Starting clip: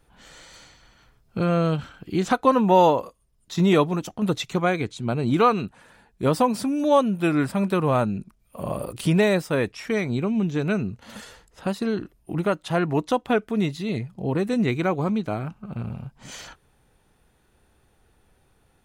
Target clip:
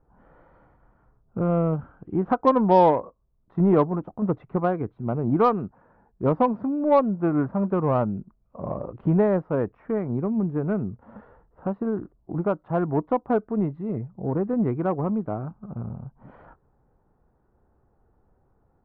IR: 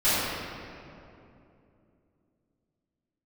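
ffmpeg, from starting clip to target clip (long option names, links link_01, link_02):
-af "lowpass=frequency=1200:width=0.5412,lowpass=frequency=1200:width=1.3066,aeval=exprs='0.501*(cos(1*acos(clip(val(0)/0.501,-1,1)))-cos(1*PI/2))+0.0141*(cos(7*acos(clip(val(0)/0.501,-1,1)))-cos(7*PI/2))':channel_layout=same"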